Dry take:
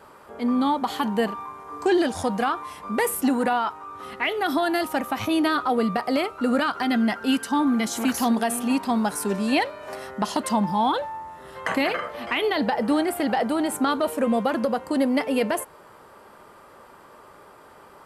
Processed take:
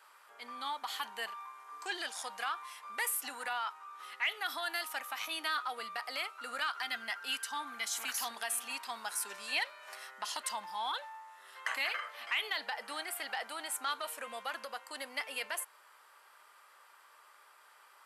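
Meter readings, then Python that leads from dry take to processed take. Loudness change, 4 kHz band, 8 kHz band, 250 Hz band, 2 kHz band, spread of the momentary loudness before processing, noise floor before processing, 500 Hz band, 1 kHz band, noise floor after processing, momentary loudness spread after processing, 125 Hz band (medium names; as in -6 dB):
-13.0 dB, -5.5 dB, -5.0 dB, -35.0 dB, -7.0 dB, 8 LU, -49 dBFS, -23.0 dB, -14.0 dB, -61 dBFS, 9 LU, under -35 dB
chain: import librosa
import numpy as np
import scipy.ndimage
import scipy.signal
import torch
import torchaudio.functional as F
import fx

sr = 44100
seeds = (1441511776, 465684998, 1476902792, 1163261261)

p1 = scipy.signal.sosfilt(scipy.signal.butter(2, 1500.0, 'highpass', fs=sr, output='sos'), x)
p2 = 10.0 ** (-23.5 / 20.0) * np.tanh(p1 / 10.0 ** (-23.5 / 20.0))
p3 = p1 + (p2 * 10.0 ** (-11.0 / 20.0))
y = p3 * 10.0 ** (-7.0 / 20.0)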